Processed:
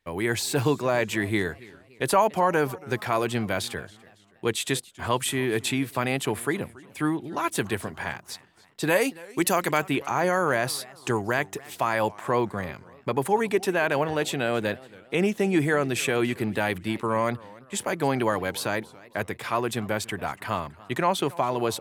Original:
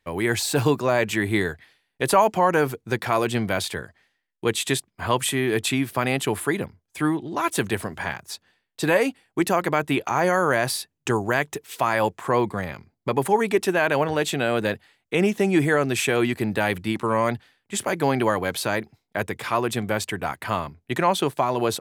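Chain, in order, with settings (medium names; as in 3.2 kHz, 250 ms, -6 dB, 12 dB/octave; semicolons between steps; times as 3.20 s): 8.89–9.80 s: treble shelf 5 kHz -> 2.7 kHz +10.5 dB; modulated delay 283 ms, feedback 42%, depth 182 cents, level -21.5 dB; trim -3 dB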